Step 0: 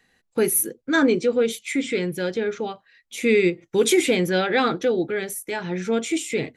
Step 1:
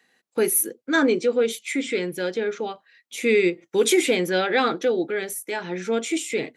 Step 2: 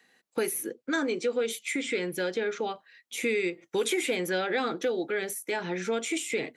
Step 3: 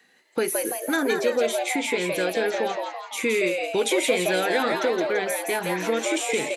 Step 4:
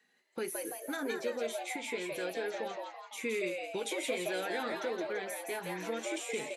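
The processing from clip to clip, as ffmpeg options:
-af "highpass=240"
-filter_complex "[0:a]acrossover=split=590|3300|6600[s0][s1][s2][s3];[s0]acompressor=threshold=0.0282:ratio=4[s4];[s1]acompressor=threshold=0.0282:ratio=4[s5];[s2]acompressor=threshold=0.00501:ratio=4[s6];[s3]acompressor=threshold=0.0158:ratio=4[s7];[s4][s5][s6][s7]amix=inputs=4:normalize=0"
-filter_complex "[0:a]asplit=7[s0][s1][s2][s3][s4][s5][s6];[s1]adelay=168,afreqshift=130,volume=0.631[s7];[s2]adelay=336,afreqshift=260,volume=0.309[s8];[s3]adelay=504,afreqshift=390,volume=0.151[s9];[s4]adelay=672,afreqshift=520,volume=0.0741[s10];[s5]adelay=840,afreqshift=650,volume=0.0363[s11];[s6]adelay=1008,afreqshift=780,volume=0.0178[s12];[s0][s7][s8][s9][s10][s11][s12]amix=inputs=7:normalize=0,volume=1.58"
-af "flanger=delay=4.7:depth=4.6:regen=-45:speed=0.31:shape=sinusoidal,volume=0.376"

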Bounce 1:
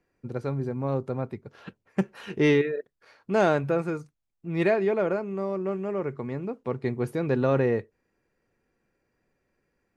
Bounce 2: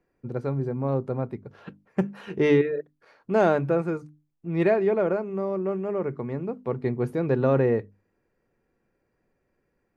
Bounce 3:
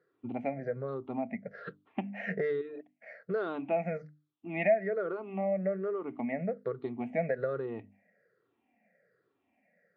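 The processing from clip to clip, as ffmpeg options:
-af "highshelf=f=2000:g=-9,bandreject=f=50:t=h:w=6,bandreject=f=100:t=h:w=6,bandreject=f=150:t=h:w=6,bandreject=f=200:t=h:w=6,bandreject=f=250:t=h:w=6,bandreject=f=300:t=h:w=6,volume=1.33"
-af "afftfilt=real='re*pow(10,21/40*sin(2*PI*(0.59*log(max(b,1)*sr/1024/100)/log(2)-(-1.2)*(pts-256)/sr)))':imag='im*pow(10,21/40*sin(2*PI*(0.59*log(max(b,1)*sr/1024/100)/log(2)-(-1.2)*(pts-256)/sr)))':win_size=1024:overlap=0.75,acompressor=threshold=0.0562:ratio=10,highpass=f=130:w=0.5412,highpass=f=130:w=1.3066,equalizer=f=140:t=q:w=4:g=-10,equalizer=f=350:t=q:w=4:g=-7,equalizer=f=660:t=q:w=4:g=9,equalizer=f=980:t=q:w=4:g=-9,equalizer=f=2000:t=q:w=4:g=9,lowpass=f=3700:w=0.5412,lowpass=f=3700:w=1.3066,volume=0.668"

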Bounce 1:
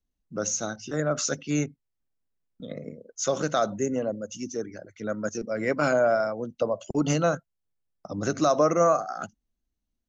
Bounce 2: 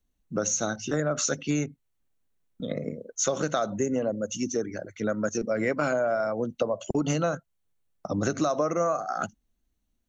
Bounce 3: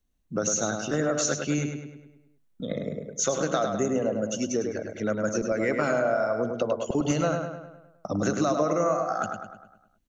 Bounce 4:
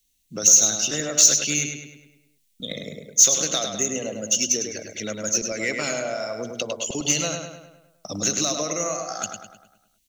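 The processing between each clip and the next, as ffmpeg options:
-af "bandreject=f=5000:w=7.6,acompressor=threshold=0.0355:ratio=6,volume=2"
-filter_complex "[0:a]asplit=2[s0][s1];[s1]adelay=103,lowpass=f=4300:p=1,volume=0.562,asplit=2[s2][s3];[s3]adelay=103,lowpass=f=4300:p=1,volume=0.53,asplit=2[s4][s5];[s5]adelay=103,lowpass=f=4300:p=1,volume=0.53,asplit=2[s6][s7];[s7]adelay=103,lowpass=f=4300:p=1,volume=0.53,asplit=2[s8][s9];[s9]adelay=103,lowpass=f=4300:p=1,volume=0.53,asplit=2[s10][s11];[s11]adelay=103,lowpass=f=4300:p=1,volume=0.53,asplit=2[s12][s13];[s13]adelay=103,lowpass=f=4300:p=1,volume=0.53[s14];[s0][s2][s4][s6][s8][s10][s12][s14]amix=inputs=8:normalize=0"
-af "aexciter=amount=3.8:drive=9.5:freq=2100,volume=0.631"

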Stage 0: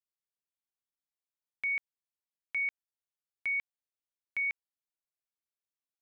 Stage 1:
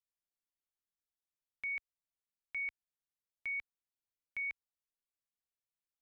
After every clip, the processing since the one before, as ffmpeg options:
-af "lowshelf=f=96:g=12,volume=0.473"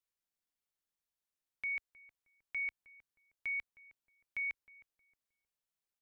-filter_complex "[0:a]asplit=2[s0][s1];[s1]adelay=313,lowpass=f=1100:p=1,volume=0.158,asplit=2[s2][s3];[s3]adelay=313,lowpass=f=1100:p=1,volume=0.38,asplit=2[s4][s5];[s5]adelay=313,lowpass=f=1100:p=1,volume=0.38[s6];[s0][s2][s4][s6]amix=inputs=4:normalize=0,volume=1.12"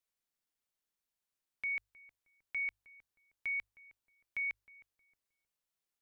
-af "bandreject=f=50:t=h:w=6,bandreject=f=100:t=h:w=6,volume=1.12"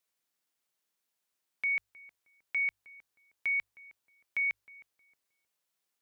-af "highpass=f=200:p=1,volume=2"

